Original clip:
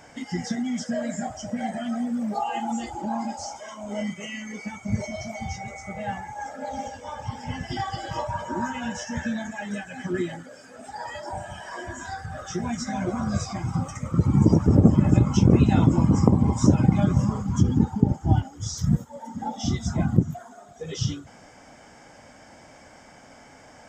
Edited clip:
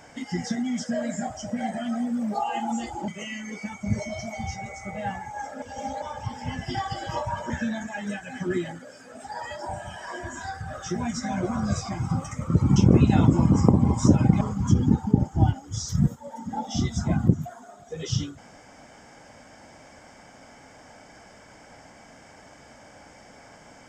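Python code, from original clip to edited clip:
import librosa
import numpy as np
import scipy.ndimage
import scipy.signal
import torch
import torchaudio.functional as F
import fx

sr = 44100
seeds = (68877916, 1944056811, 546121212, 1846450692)

y = fx.edit(x, sr, fx.cut(start_s=3.08, length_s=1.02),
    fx.reverse_span(start_s=6.64, length_s=0.4),
    fx.cut(start_s=8.52, length_s=0.62),
    fx.cut(start_s=14.4, length_s=0.95),
    fx.cut(start_s=17.0, length_s=0.3), tone=tone)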